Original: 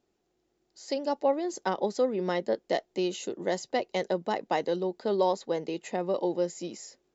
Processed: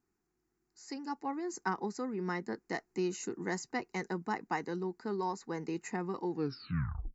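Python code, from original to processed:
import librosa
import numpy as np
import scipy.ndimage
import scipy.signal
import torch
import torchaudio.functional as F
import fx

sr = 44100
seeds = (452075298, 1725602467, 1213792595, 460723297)

y = fx.tape_stop_end(x, sr, length_s=0.83)
y = fx.rider(y, sr, range_db=3, speed_s=0.5)
y = fx.fixed_phaser(y, sr, hz=1400.0, stages=4)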